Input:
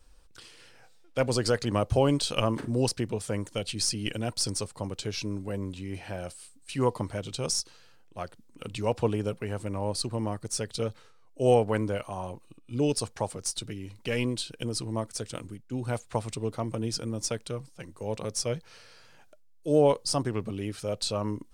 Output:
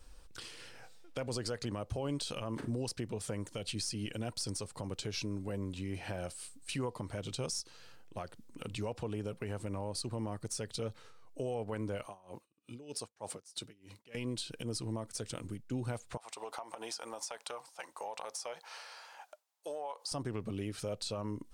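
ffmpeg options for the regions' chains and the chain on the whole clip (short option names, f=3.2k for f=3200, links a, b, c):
-filter_complex "[0:a]asettb=1/sr,asplit=3[a][b][c];[a]atrim=end=12.064[d];[b]atrim=start=12.06:end=14.15,asetpts=PTS-STARTPTS,afade=t=in:d=0.004:c=qsin,afade=t=out:st=2.086:d=0.004:c=qsin,highpass=f=260:p=1,aeval=exprs='val(0)*pow(10,-29*(0.5-0.5*cos(2*PI*3.2*n/s))/20)':c=same[e];[c]atrim=start=14.146[f];[d][e]acrossfade=d=0.004:c1=hsin:c2=qsin[g];[g][f]acrossfade=d=0.004:c1=qsin:c2=hsin,asettb=1/sr,asplit=3[h][i][j];[h]atrim=end=16.174[k];[i]atrim=start=16.17:end=20.12,asetpts=PTS-STARTPTS,afade=t=in:d=0.004:c=qsin,afade=t=out:st=3.946:d=0.004:c=qsin,highpass=f=820:t=q:w=3.2,acompressor=threshold=-38dB:ratio=6:attack=3.2:release=140:knee=1:detection=peak[l];[j]atrim=start=20.116[m];[k][l]acrossfade=d=0.004:c1=hsin:c2=qsin[n];[n][m]acrossfade=d=0.004:c1=qsin:c2=hsin,acompressor=threshold=-41dB:ratio=2,alimiter=level_in=6dB:limit=-24dB:level=0:latency=1:release=72,volume=-6dB,volume=2.5dB"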